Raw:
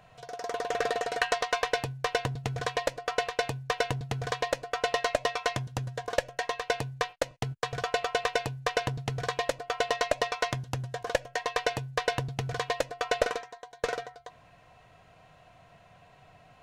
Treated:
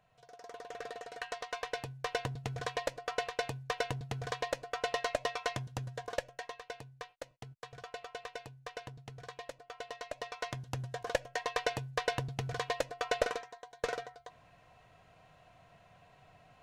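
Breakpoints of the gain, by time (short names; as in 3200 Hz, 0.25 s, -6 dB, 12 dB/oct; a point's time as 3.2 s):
1.14 s -14.5 dB
2.2 s -6 dB
6.03 s -6 dB
6.73 s -16 dB
10.03 s -16 dB
10.8 s -4.5 dB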